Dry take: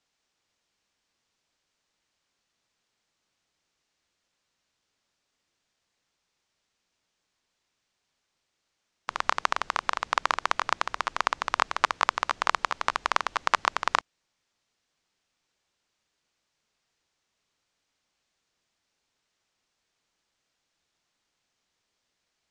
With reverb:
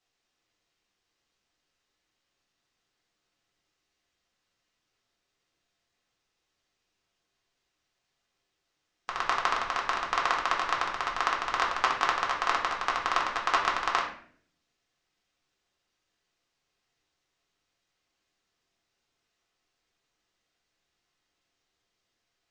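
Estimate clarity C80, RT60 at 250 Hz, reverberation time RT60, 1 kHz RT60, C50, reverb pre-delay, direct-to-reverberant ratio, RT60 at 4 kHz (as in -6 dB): 10.0 dB, 0.90 s, 0.55 s, 0.50 s, 6.5 dB, 4 ms, -2.5 dB, 0.45 s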